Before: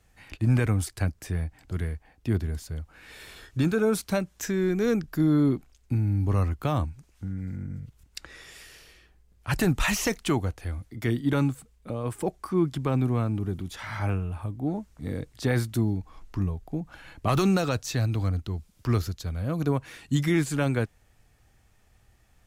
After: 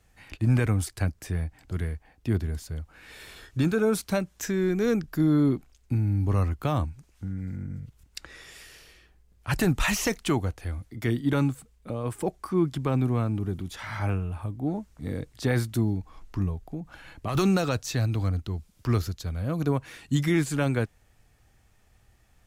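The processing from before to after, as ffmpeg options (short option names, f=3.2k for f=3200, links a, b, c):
-filter_complex "[0:a]asettb=1/sr,asplit=3[a][b][c];[a]atrim=end=16.714[d];[b]atrim=start=16.71:end=17.35,asetpts=PTS-STARTPTS,afade=t=in:d=0.004:c=qsin,afade=t=out:st=0.636:d=0.004:c=qsin,acompressor=threshold=-36dB:ratio=1.5:attack=3.2:release=140:knee=1:detection=peak[e];[c]atrim=start=17.346[f];[d][e]acrossfade=d=0.004:c1=hsin:c2=qsin[g];[g][f]acrossfade=d=0.004:c1=qsin:c2=hsin"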